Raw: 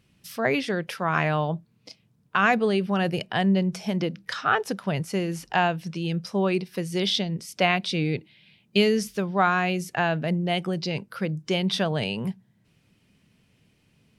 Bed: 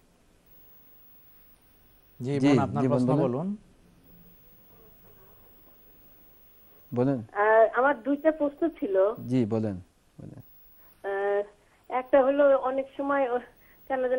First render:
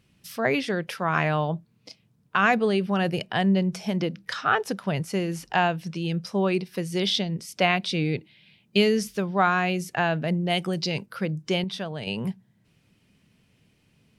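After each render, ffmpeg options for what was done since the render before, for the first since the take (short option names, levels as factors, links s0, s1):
-filter_complex "[0:a]asettb=1/sr,asplit=3[s0][s1][s2];[s0]atrim=end=10.504[s3];[s1]atrim=start=10.5:end=11.06,asetpts=PTS-STARTPTS,afade=t=in:d=0.004:c=qsin,afade=t=out:st=0.556:d=0.004:c=qsin,highshelf=f=3900:g=7[s4];[s2]atrim=start=11.056[s5];[s3][s4]acrossfade=d=0.004:c1=hsin:c2=qsin[s6];[s6][s5]acrossfade=d=0.004:c1=qsin:c2=hsin,asplit=3[s7][s8][s9];[s7]atrim=end=11.642[s10];[s8]atrim=start=11.638:end=12.072,asetpts=PTS-STARTPTS,volume=0.422[s11];[s9]atrim=start=12.068[s12];[s10][s11]acrossfade=d=0.004:c1=hsin:c2=hsin[s13];[s13][s12]acrossfade=d=0.004:c1=hsin:c2=hsin"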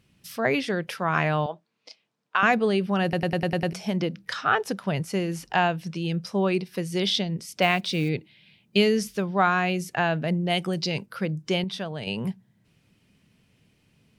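-filter_complex "[0:a]asettb=1/sr,asplit=3[s0][s1][s2];[s0]atrim=end=1.464[s3];[s1]atrim=start=1.46:end=2.43,asetpts=PTS-STARTPTS,afade=t=in:d=0.004:c=qsin,afade=t=out:st=0.966:d=0.004:c=qsin,highpass=520,lowpass=6300[s4];[s2]atrim=start=2.426[s5];[s3][s4]acrossfade=d=0.004:c1=hsin:c2=qsin[s6];[s6][s5]acrossfade=d=0.004:c1=qsin:c2=hsin,asettb=1/sr,asplit=3[s7][s8][s9];[s7]atrim=end=7.624[s10];[s8]atrim=start=7.62:end=8.09,asetpts=PTS-STARTPTS,afade=t=in:d=0.004:c=qsin,afade=t=out:st=0.466:d=0.004:c=qsin,acrusher=bits=7:mode=log:mix=0:aa=0.000001[s11];[s9]atrim=start=8.086[s12];[s10][s11]acrossfade=d=0.004:c1=hsin:c2=qsin[s13];[s13][s12]acrossfade=d=0.004:c1=qsin:c2=hsin,asplit=8[s14][s15][s16][s17][s18][s19][s20][s21];[s14]atrim=end=3.132[s22];[s15]atrim=start=3.028:end=3.132[s23];[s16]atrim=start=3.028:end=3.132[s24];[s17]atrim=start=3.028:end=3.132[s25];[s18]atrim=start=3.028:end=3.132[s26];[s19]atrim=start=3.028:end=3.132[s27];[s20]atrim=start=3.028:end=3.132[s28];[s21]atrim=start=3.728[s29];[s22][s23]acrossfade=d=0.004:c1=hsin:c2=hsin[s30];[s30][s24]acrossfade=d=0.004:c1=hsin:c2=hsin[s31];[s31][s25]acrossfade=d=0.004:c1=hsin:c2=hsin[s32];[s32][s26]acrossfade=d=0.004:c1=hsin:c2=hsin[s33];[s33][s27]acrossfade=d=0.004:c1=hsin:c2=hsin[s34];[s34][s28]acrossfade=d=0.004:c1=hsin:c2=hsin[s35];[s35][s29]acrossfade=d=0.004:c1=hsin:c2=hsin"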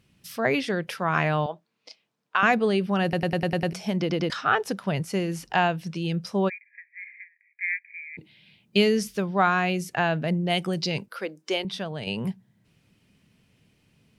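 -filter_complex "[0:a]asplit=3[s0][s1][s2];[s0]afade=t=out:st=6.48:d=0.02[s3];[s1]asuperpass=centerf=2000:order=20:qfactor=2.5,afade=t=in:st=6.48:d=0.02,afade=t=out:st=8.17:d=0.02[s4];[s2]afade=t=in:st=8.17:d=0.02[s5];[s3][s4][s5]amix=inputs=3:normalize=0,asettb=1/sr,asplit=3[s6][s7][s8];[s6]atrim=end=11.094[s9];[s7]atrim=start=11.09:end=11.65,asetpts=PTS-STARTPTS,afade=t=in:d=0.004:c=qsin,afade=t=out:st=0.556:d=0.004:c=qsin,highpass=f=310:w=0.5412,highpass=f=310:w=1.3066[s10];[s8]atrim=start=11.646[s11];[s9][s10]acrossfade=d=0.004:c1=hsin:c2=qsin[s12];[s12][s11]acrossfade=d=0.004:c1=qsin:c2=hsin,asplit=4[s13][s14][s15][s16];[s13]atrim=end=4.102[s17];[s14]atrim=start=3.998:end=4.102[s18];[s15]atrim=start=3.998:end=4.102[s19];[s16]atrim=start=4.298[s20];[s17][s18]acrossfade=d=0.004:c1=hsin:c2=hsin[s21];[s21][s19]acrossfade=d=0.004:c1=hsin:c2=hsin[s22];[s22][s20]acrossfade=d=0.004:c1=hsin:c2=hsin"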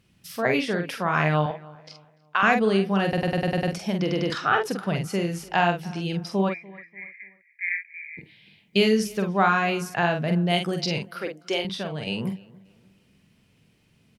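-filter_complex "[0:a]asplit=2[s0][s1];[s1]adelay=46,volume=0.531[s2];[s0][s2]amix=inputs=2:normalize=0,asplit=2[s3][s4];[s4]adelay=293,lowpass=f=2300:p=1,volume=0.0841,asplit=2[s5][s6];[s6]adelay=293,lowpass=f=2300:p=1,volume=0.38,asplit=2[s7][s8];[s8]adelay=293,lowpass=f=2300:p=1,volume=0.38[s9];[s3][s5][s7][s9]amix=inputs=4:normalize=0"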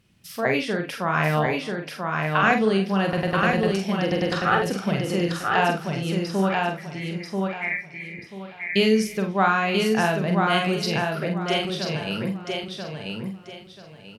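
-filter_complex "[0:a]asplit=2[s0][s1];[s1]adelay=37,volume=0.282[s2];[s0][s2]amix=inputs=2:normalize=0,aecho=1:1:987|1974|2961|3948:0.668|0.18|0.0487|0.0132"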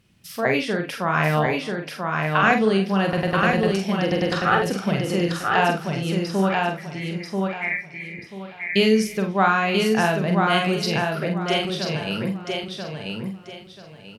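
-af "volume=1.19"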